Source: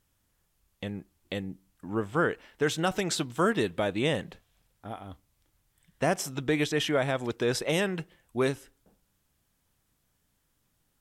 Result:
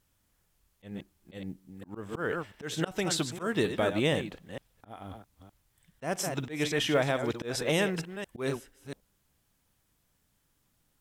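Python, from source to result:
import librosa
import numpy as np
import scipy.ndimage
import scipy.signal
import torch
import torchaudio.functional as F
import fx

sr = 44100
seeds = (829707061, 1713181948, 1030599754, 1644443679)

y = fx.reverse_delay(x, sr, ms=229, wet_db=-10.0)
y = fx.quant_companded(y, sr, bits=8)
y = fx.auto_swell(y, sr, attack_ms=181.0)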